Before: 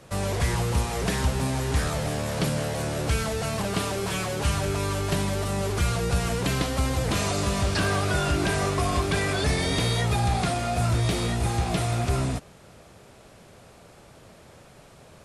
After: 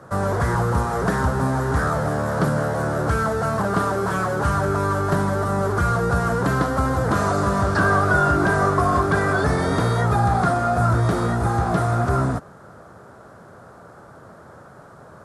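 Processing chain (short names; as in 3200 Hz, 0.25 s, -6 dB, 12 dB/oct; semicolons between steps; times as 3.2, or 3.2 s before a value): HPF 81 Hz; resonant high shelf 1900 Hz -10 dB, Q 3; gain +5.5 dB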